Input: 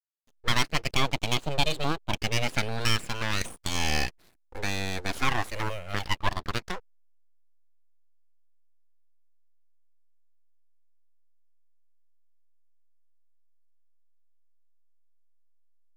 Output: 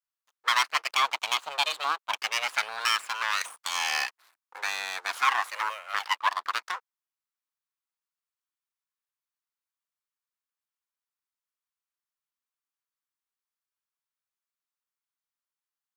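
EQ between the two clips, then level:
high-pass with resonance 1,100 Hz, resonance Q 2.3
0.0 dB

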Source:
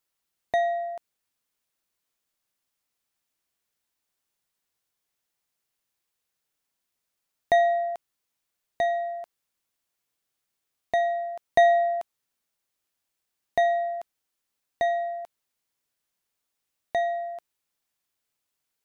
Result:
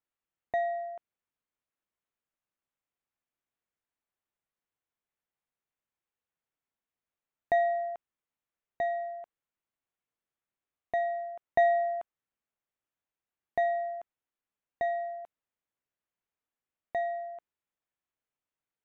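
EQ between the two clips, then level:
dynamic equaliser 1,400 Hz, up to +4 dB, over −38 dBFS, Q 1.5
moving average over 9 samples
−6.0 dB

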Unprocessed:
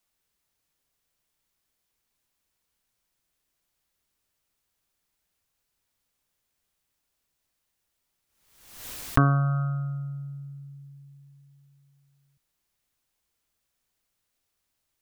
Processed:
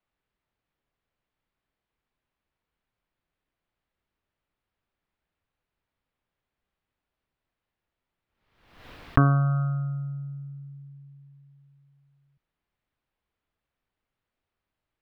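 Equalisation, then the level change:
high-frequency loss of the air 390 metres
+1.5 dB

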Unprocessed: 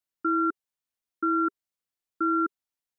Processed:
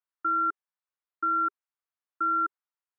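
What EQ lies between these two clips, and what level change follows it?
resonant band-pass 1,200 Hz, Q 1.5
+2.0 dB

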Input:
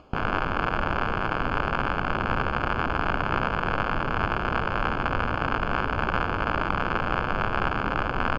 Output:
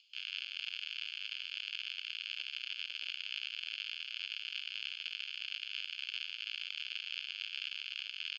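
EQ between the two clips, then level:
Butterworth high-pass 3,000 Hz 36 dB per octave
low-pass filter 4,600 Hz 12 dB per octave
+6.0 dB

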